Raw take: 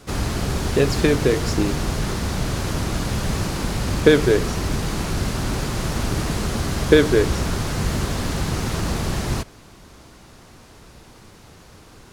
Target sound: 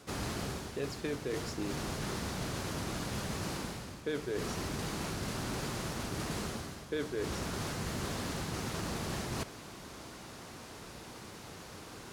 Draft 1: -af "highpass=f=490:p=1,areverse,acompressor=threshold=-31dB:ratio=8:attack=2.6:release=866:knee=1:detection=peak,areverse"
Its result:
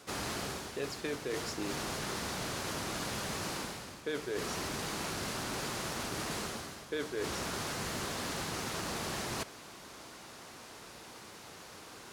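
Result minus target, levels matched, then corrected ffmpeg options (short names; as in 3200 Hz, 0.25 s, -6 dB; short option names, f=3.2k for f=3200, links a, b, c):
125 Hz band -6.5 dB
-af "highpass=f=150:p=1,areverse,acompressor=threshold=-31dB:ratio=8:attack=2.6:release=866:knee=1:detection=peak,areverse"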